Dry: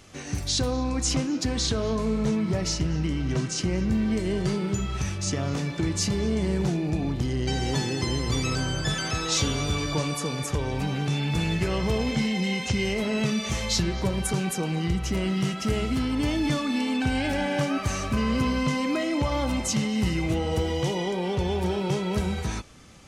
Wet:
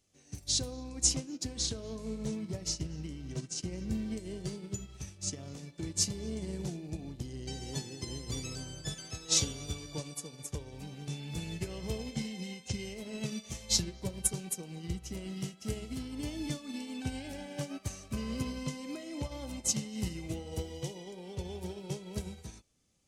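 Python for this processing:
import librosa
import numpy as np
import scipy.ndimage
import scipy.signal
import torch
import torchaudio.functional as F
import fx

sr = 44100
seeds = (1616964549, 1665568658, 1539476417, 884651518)

y = fx.curve_eq(x, sr, hz=(530.0, 1300.0, 8100.0), db=(0, -7, 8))
y = fx.upward_expand(y, sr, threshold_db=-33.0, expansion=2.5)
y = F.gain(torch.from_numpy(y), -3.5).numpy()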